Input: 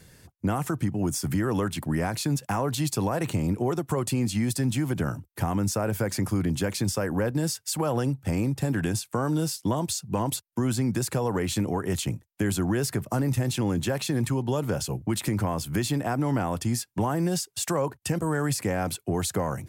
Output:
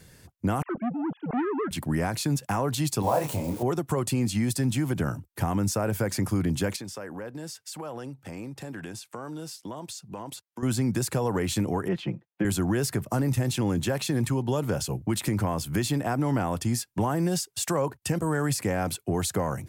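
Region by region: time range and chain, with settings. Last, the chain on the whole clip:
0:00.62–0:01.71: three sine waves on the formant tracks + high-frequency loss of the air 280 metres + saturating transformer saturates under 640 Hz
0:03.02–0:03.63: spike at every zero crossing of −26 dBFS + flat-topped bell 730 Hz +9 dB 1.3 octaves + micro pitch shift up and down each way 43 cents
0:06.76–0:10.63: high-pass filter 290 Hz 6 dB per octave + high-shelf EQ 7,500 Hz −7.5 dB + downward compressor 2 to 1, threshold −40 dBFS
0:11.88–0:12.45: high-pass filter 160 Hz + high-frequency loss of the air 350 metres + comb filter 5.8 ms, depth 71%
whole clip: no processing

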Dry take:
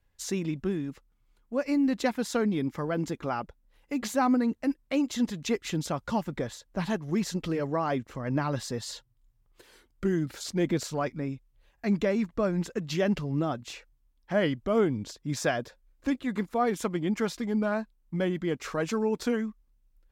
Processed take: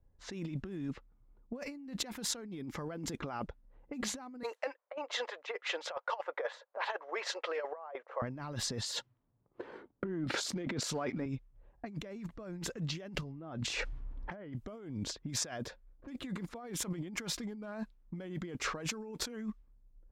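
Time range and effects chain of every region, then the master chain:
0:04.43–0:08.22: elliptic high-pass filter 510 Hz, stop band 60 dB + compressor whose output falls as the input rises −37 dBFS, ratio −0.5
0:08.84–0:11.26: high-pass filter 180 Hz + compressor whose output falls as the input rises −39 dBFS + leveller curve on the samples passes 1
0:13.22–0:14.53: treble cut that deepens with the level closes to 1,600 Hz, closed at −22 dBFS + envelope flattener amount 50%
whole clip: low-pass that shuts in the quiet parts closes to 620 Hz, open at −27 dBFS; compressor whose output falls as the input rises −37 dBFS, ratio −1; level −3 dB

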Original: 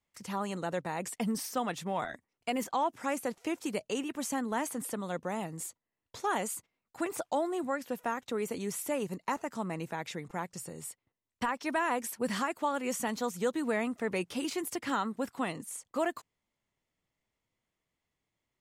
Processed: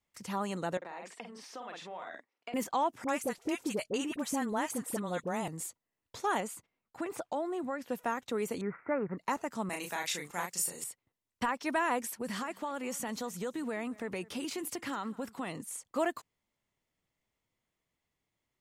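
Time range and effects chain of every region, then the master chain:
0:00.77–0:02.54: double-tracking delay 48 ms −5 dB + downward compressor 12 to 1, threshold −37 dBFS + band-pass filter 370–4,200 Hz
0:03.04–0:05.48: all-pass dispersion highs, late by 45 ms, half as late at 910 Hz + multiband upward and downward compressor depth 40%
0:06.40–0:07.90: high-shelf EQ 4,400 Hz −8.5 dB + downward compressor 2 to 1, threshold −33 dBFS
0:08.61–0:09.18: Butterworth low-pass 2,200 Hz 72 dB per octave + parametric band 1,400 Hz +13 dB 0.5 octaves
0:09.69–0:10.84: spectral tilt +3.5 dB per octave + double-tracking delay 34 ms −3.5 dB
0:12.01–0:15.60: downward compressor 3 to 1, threshold −34 dBFS + single-tap delay 205 ms −21.5 dB
whole clip: no processing

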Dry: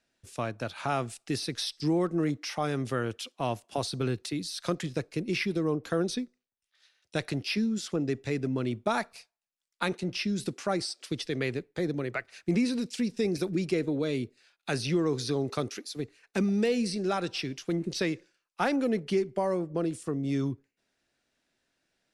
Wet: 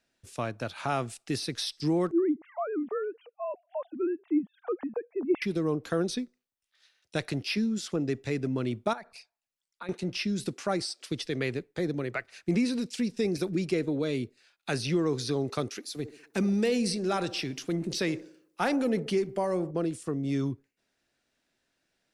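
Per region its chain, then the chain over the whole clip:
0:02.11–0:05.42: three sine waves on the formant tracks + low-pass filter 1,100 Hz + dynamic equaliser 190 Hz, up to +3 dB, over −41 dBFS, Q 1.1
0:08.93–0:09.89: spectral envelope exaggerated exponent 1.5 + downward compressor 8 to 1, threshold −37 dBFS
0:15.81–0:19.71: transient designer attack −1 dB, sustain +4 dB + high-shelf EQ 9,900 Hz +6.5 dB + delay with a band-pass on its return 67 ms, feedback 49%, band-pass 490 Hz, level −13 dB
whole clip: no processing

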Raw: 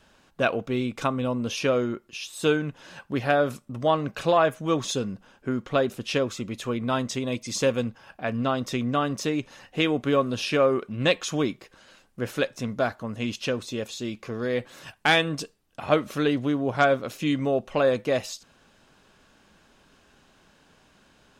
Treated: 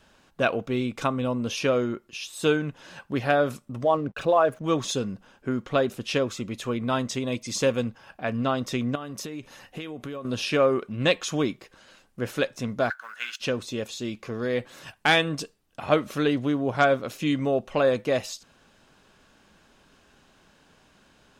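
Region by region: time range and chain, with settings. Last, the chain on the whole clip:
0:03.84–0:04.64: spectral envelope exaggerated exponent 1.5 + slack as between gear wheels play −46.5 dBFS
0:08.95–0:10.25: parametric band 12,000 Hz +8.5 dB 0.52 octaves + downward compressor 16 to 1, threshold −31 dBFS
0:12.90–0:13.40: mu-law and A-law mismatch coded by A + high-pass with resonance 1,500 Hz, resonance Q 12
whole clip: no processing

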